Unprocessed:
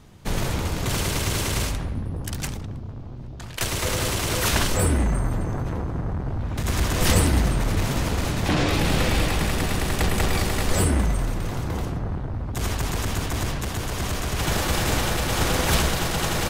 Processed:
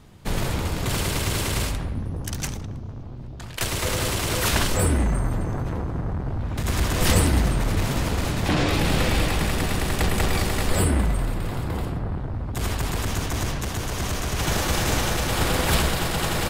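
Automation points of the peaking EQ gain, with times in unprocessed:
peaking EQ 6.1 kHz 0.25 oct
-3.5 dB
from 2.00 s +5.5 dB
from 3.03 s -2 dB
from 10.69 s -11.5 dB
from 12.18 s -4 dB
from 13.07 s +2.5 dB
from 15.30 s -5 dB

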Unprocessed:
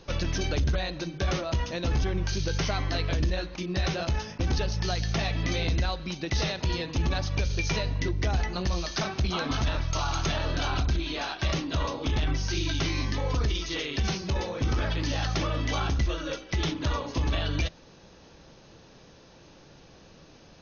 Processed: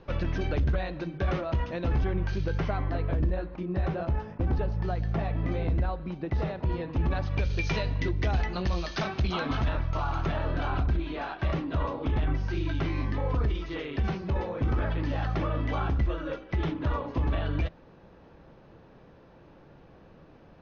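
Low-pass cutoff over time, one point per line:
2.36 s 2 kHz
2.98 s 1.2 kHz
6.68 s 1.2 kHz
7.19 s 1.9 kHz
7.60 s 3.4 kHz
9.32 s 3.4 kHz
9.89 s 1.7 kHz

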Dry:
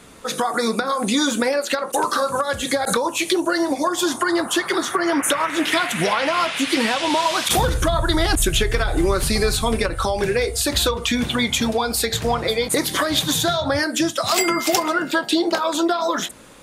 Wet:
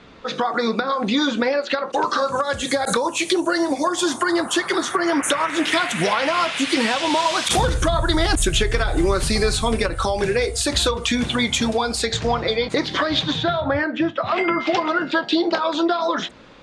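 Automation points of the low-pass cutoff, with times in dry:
low-pass 24 dB/octave
1.85 s 4.6 kHz
2.70 s 9.5 kHz
11.80 s 9.5 kHz
12.61 s 4.8 kHz
13.21 s 4.8 kHz
13.64 s 2.7 kHz
14.36 s 2.7 kHz
15.03 s 4.8 kHz

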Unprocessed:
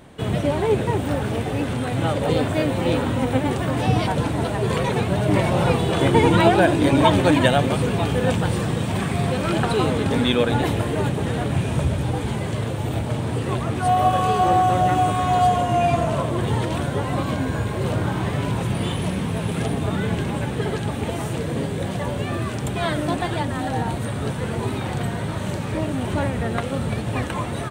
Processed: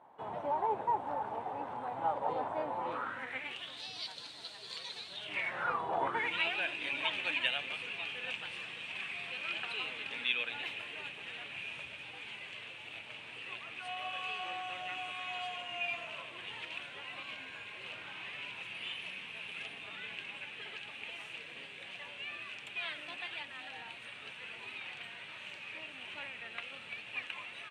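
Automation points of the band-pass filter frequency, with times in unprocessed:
band-pass filter, Q 5.6
2.78 s 890 Hz
3.84 s 4.3 kHz
5.08 s 4.3 kHz
5.98 s 770 Hz
6.33 s 2.6 kHz

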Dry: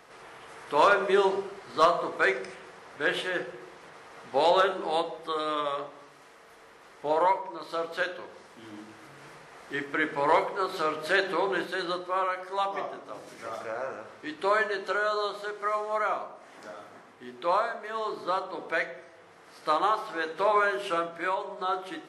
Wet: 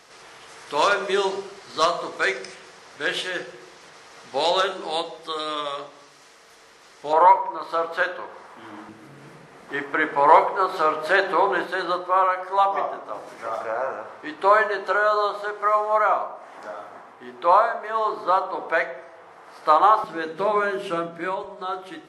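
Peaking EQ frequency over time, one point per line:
peaking EQ +11 dB 1.8 oct
5.7 kHz
from 7.13 s 1 kHz
from 8.89 s 200 Hz
from 9.69 s 890 Hz
from 20.04 s 200 Hz
from 21.44 s 62 Hz

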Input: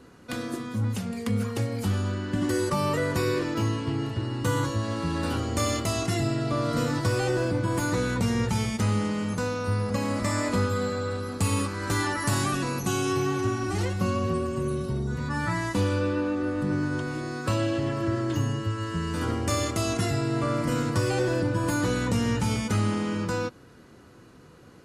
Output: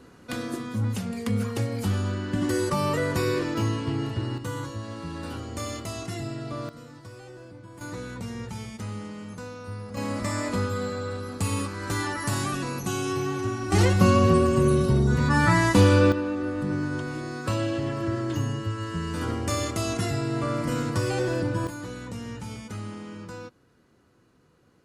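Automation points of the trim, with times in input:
+0.5 dB
from 4.38 s -7 dB
from 6.69 s -19 dB
from 7.81 s -10 dB
from 9.97 s -2 dB
from 13.72 s +8 dB
from 16.12 s -1 dB
from 21.67 s -11 dB

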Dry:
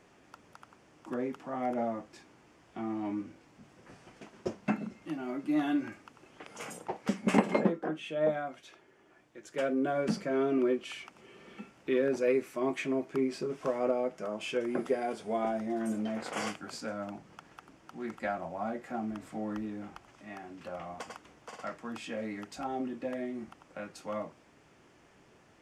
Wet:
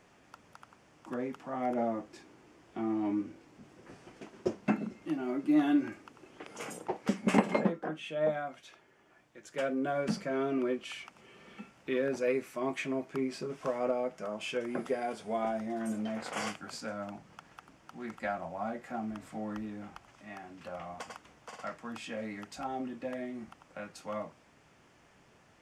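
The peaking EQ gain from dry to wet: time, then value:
peaking EQ 350 Hz 0.86 oct
1.43 s -3.5 dB
1.90 s +4.5 dB
6.89 s +4.5 dB
7.67 s -5 dB

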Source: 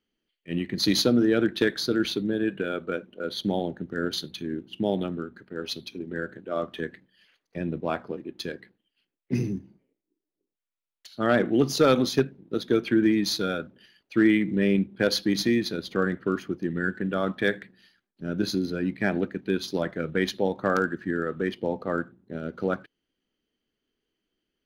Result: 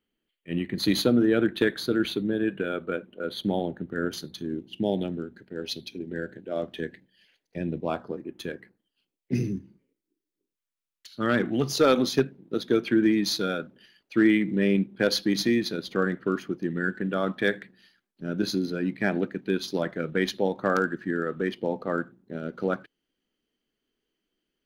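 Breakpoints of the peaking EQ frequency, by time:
peaking EQ -13 dB 0.44 oct
3.99 s 5.4 kHz
4.74 s 1.2 kHz
7.74 s 1.2 kHz
8.46 s 5.2 kHz
9.57 s 710 Hz
11.35 s 710 Hz
12.08 s 85 Hz

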